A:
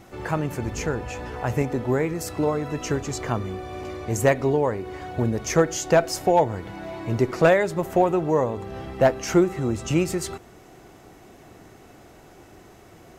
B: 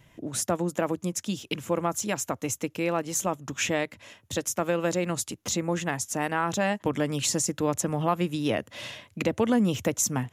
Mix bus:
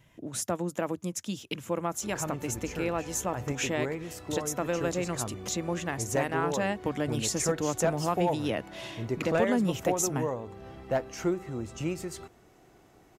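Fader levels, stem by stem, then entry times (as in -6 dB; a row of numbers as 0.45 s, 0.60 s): -10.5 dB, -4.0 dB; 1.90 s, 0.00 s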